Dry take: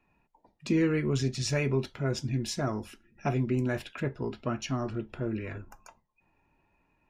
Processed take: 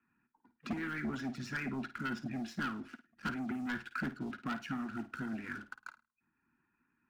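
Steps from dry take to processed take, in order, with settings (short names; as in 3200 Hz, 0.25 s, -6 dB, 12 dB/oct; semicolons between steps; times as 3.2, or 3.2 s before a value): double band-pass 590 Hz, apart 2.6 oct; sample leveller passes 2; harmonic-percussive split harmonic -12 dB; hard clip -36 dBFS, distortion -16 dB; on a send: flutter echo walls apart 9.1 m, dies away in 0.25 s; on the sum: three-band squash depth 40%; gain +4.5 dB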